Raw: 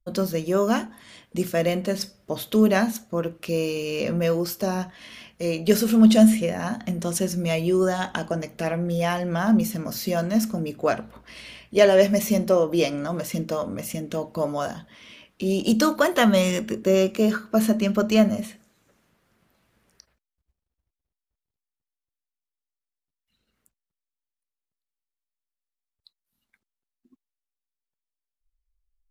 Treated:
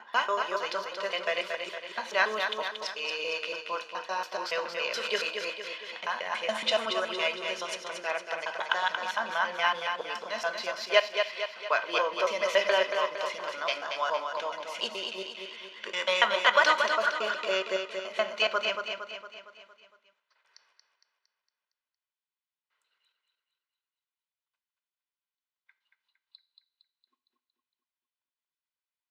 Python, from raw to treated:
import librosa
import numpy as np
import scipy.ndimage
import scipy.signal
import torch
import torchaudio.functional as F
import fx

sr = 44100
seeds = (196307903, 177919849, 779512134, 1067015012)

y = fx.block_reorder(x, sr, ms=141.0, group=7)
y = scipy.signal.sosfilt(scipy.signal.cheby1(2, 1.0, [960.0, 3700.0], 'bandpass', fs=sr, output='sos'), y)
y = y + 0.36 * np.pad(y, (int(2.0 * sr / 1000.0), 0))[:len(y)]
y = fx.echo_feedback(y, sr, ms=230, feedback_pct=52, wet_db=-6.0)
y = fx.rev_double_slope(y, sr, seeds[0], early_s=0.5, late_s=2.1, knee_db=-27, drr_db=13.0)
y = F.gain(torch.from_numpy(y), 2.0).numpy()